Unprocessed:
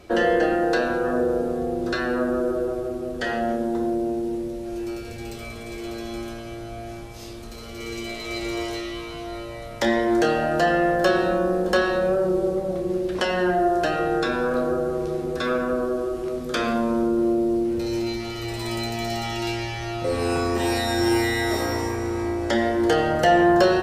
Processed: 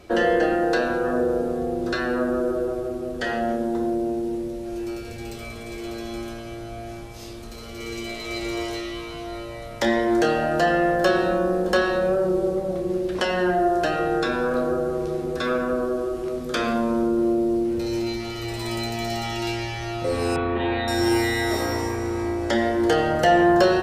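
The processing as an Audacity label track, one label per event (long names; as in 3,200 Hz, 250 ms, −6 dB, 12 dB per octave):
20.360000	20.880000	elliptic low-pass filter 3,600 Hz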